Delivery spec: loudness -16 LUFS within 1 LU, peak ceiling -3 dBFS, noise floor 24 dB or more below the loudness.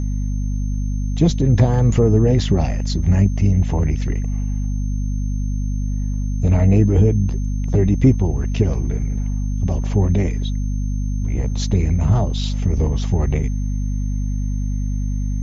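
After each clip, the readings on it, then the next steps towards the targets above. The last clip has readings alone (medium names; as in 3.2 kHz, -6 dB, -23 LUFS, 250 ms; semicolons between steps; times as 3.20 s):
hum 50 Hz; highest harmonic 250 Hz; hum level -18 dBFS; steady tone 6.3 kHz; tone level -46 dBFS; loudness -19.5 LUFS; peak level -2.0 dBFS; loudness target -16.0 LUFS
-> de-hum 50 Hz, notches 5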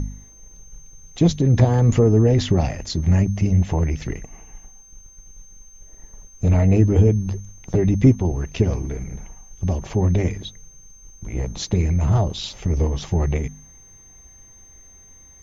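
hum not found; steady tone 6.3 kHz; tone level -46 dBFS
-> band-stop 6.3 kHz, Q 30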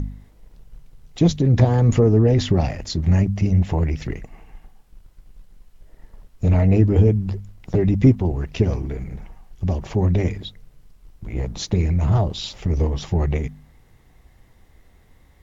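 steady tone not found; loudness -20.0 LUFS; peak level -3.5 dBFS; loudness target -16.0 LUFS
-> trim +4 dB; peak limiter -3 dBFS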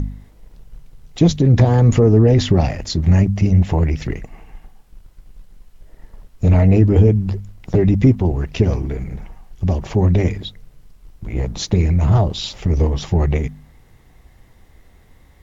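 loudness -16.5 LUFS; peak level -3.0 dBFS; noise floor -49 dBFS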